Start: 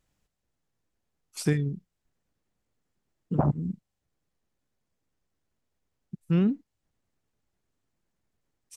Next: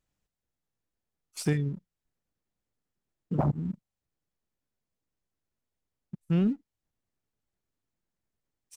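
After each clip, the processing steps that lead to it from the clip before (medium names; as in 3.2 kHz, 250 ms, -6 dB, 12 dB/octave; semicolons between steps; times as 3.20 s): waveshaping leveller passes 1; trim -5 dB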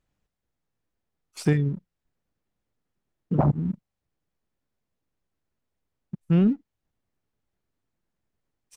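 treble shelf 4.5 kHz -10 dB; trim +5.5 dB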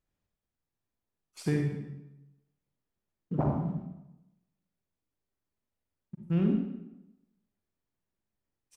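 reverberation RT60 0.95 s, pre-delay 39 ms, DRR 1 dB; trim -8.5 dB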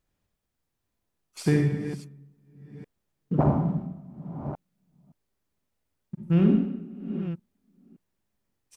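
chunks repeated in reverse 569 ms, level -11.5 dB; trim +6.5 dB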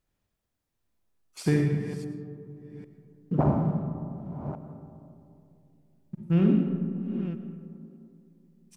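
algorithmic reverb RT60 2.7 s, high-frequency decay 0.25×, pre-delay 65 ms, DRR 9.5 dB; trim -1.5 dB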